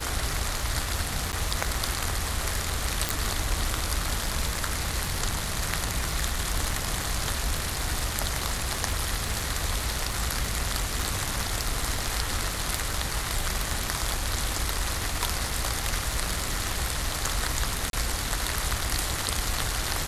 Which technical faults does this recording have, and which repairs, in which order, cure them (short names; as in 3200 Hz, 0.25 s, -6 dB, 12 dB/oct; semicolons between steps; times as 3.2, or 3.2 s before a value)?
crackle 42/s -31 dBFS
1.32–1.33 gap 9.6 ms
3.09 pop
17.9–17.93 gap 32 ms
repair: de-click; interpolate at 1.32, 9.6 ms; interpolate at 17.9, 32 ms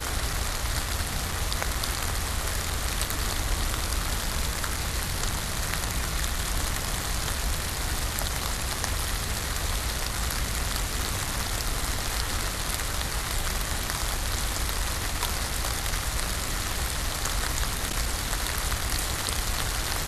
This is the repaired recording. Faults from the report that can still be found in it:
none